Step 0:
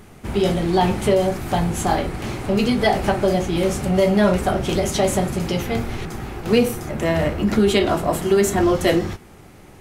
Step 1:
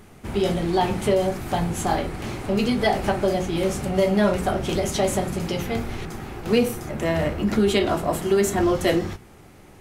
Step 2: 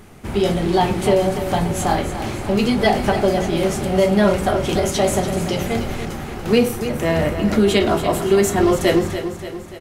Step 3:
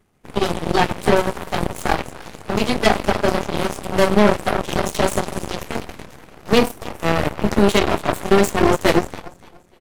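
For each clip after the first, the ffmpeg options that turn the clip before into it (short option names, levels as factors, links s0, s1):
-af "bandreject=f=60:t=h:w=6,bandreject=f=120:t=h:w=6,bandreject=f=180:t=h:w=6,volume=0.708"
-af "aecho=1:1:290|580|870|1160|1450|1740:0.299|0.161|0.0871|0.047|0.0254|0.0137,volume=1.58"
-af "aeval=exprs='0.668*(cos(1*acos(clip(val(0)/0.668,-1,1)))-cos(1*PI/2))+0.168*(cos(4*acos(clip(val(0)/0.668,-1,1)))-cos(4*PI/2))+0.0473*(cos(6*acos(clip(val(0)/0.668,-1,1)))-cos(6*PI/2))+0.106*(cos(7*acos(clip(val(0)/0.668,-1,1)))-cos(7*PI/2))+0.0299*(cos(8*acos(clip(val(0)/0.668,-1,1)))-cos(8*PI/2))':c=same"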